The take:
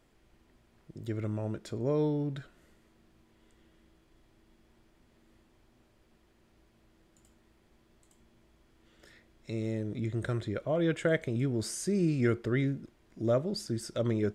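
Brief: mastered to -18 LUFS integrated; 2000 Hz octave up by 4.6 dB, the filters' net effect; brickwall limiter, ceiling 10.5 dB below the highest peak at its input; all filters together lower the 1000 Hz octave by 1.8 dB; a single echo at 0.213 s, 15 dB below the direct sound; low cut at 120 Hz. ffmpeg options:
-af "highpass=120,equalizer=f=1k:t=o:g=-6,equalizer=f=2k:t=o:g=7.5,alimiter=limit=-23dB:level=0:latency=1,aecho=1:1:213:0.178,volume=16.5dB"

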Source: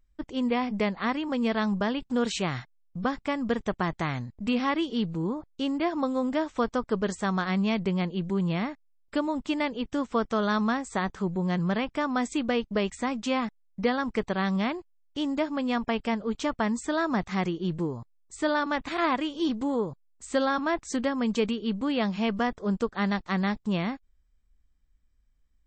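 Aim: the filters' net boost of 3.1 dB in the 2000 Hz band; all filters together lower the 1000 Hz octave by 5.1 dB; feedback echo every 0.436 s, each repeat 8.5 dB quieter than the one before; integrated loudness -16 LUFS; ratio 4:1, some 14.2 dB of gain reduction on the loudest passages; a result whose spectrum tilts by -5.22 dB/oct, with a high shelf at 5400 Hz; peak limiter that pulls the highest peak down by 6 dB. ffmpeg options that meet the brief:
-af "equalizer=f=1k:t=o:g=-8.5,equalizer=f=2k:t=o:g=7,highshelf=f=5.4k:g=-4.5,acompressor=threshold=-40dB:ratio=4,alimiter=level_in=9dB:limit=-24dB:level=0:latency=1,volume=-9dB,aecho=1:1:436|872|1308|1744:0.376|0.143|0.0543|0.0206,volume=26.5dB"

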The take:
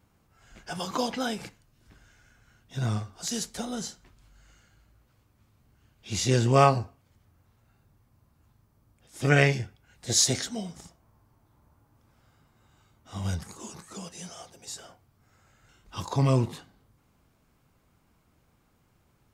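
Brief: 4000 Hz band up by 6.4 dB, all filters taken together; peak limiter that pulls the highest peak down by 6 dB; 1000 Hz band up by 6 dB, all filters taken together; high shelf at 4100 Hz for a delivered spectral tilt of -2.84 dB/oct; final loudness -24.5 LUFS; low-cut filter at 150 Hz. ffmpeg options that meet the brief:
-af "highpass=150,equalizer=f=1k:t=o:g=7.5,equalizer=f=4k:t=o:g=5.5,highshelf=f=4.1k:g=3.5,volume=1.5dB,alimiter=limit=-5.5dB:level=0:latency=1"

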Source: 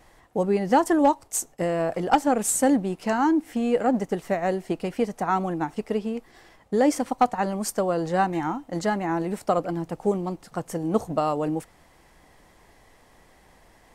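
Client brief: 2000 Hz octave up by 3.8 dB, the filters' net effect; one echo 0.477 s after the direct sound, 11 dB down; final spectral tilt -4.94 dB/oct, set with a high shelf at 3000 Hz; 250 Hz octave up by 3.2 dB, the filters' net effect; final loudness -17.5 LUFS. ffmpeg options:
-af "equalizer=f=250:t=o:g=4,equalizer=f=2k:t=o:g=6,highshelf=f=3k:g=-3.5,aecho=1:1:477:0.282,volume=5.5dB"

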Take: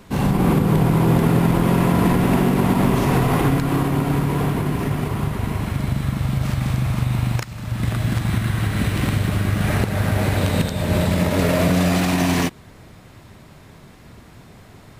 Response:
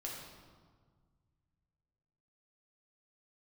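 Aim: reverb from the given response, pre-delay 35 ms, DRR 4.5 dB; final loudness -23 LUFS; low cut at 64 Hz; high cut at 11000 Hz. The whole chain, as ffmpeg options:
-filter_complex "[0:a]highpass=64,lowpass=11k,asplit=2[a][b];[1:a]atrim=start_sample=2205,adelay=35[c];[b][c]afir=irnorm=-1:irlink=0,volume=-4dB[d];[a][d]amix=inputs=2:normalize=0,volume=-5dB"

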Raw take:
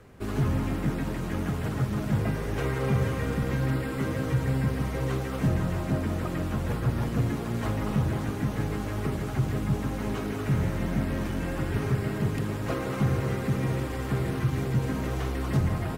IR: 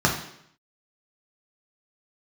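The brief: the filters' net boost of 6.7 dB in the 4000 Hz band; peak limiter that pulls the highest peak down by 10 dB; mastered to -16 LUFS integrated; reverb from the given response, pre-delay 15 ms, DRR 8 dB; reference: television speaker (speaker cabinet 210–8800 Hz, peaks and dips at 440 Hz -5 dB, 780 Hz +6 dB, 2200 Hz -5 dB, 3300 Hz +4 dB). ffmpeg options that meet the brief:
-filter_complex "[0:a]equalizer=f=4k:t=o:g=6.5,alimiter=level_in=0.5dB:limit=-24dB:level=0:latency=1,volume=-0.5dB,asplit=2[a][b];[1:a]atrim=start_sample=2205,adelay=15[c];[b][c]afir=irnorm=-1:irlink=0,volume=-25dB[d];[a][d]amix=inputs=2:normalize=0,highpass=f=210:w=0.5412,highpass=f=210:w=1.3066,equalizer=f=440:t=q:w=4:g=-5,equalizer=f=780:t=q:w=4:g=6,equalizer=f=2.2k:t=q:w=4:g=-5,equalizer=f=3.3k:t=q:w=4:g=4,lowpass=f=8.8k:w=0.5412,lowpass=f=8.8k:w=1.3066,volume=19.5dB"

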